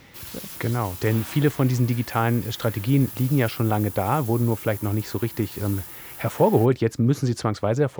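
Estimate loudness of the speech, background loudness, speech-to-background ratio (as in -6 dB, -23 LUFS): -23.5 LUFS, -36.0 LUFS, 12.5 dB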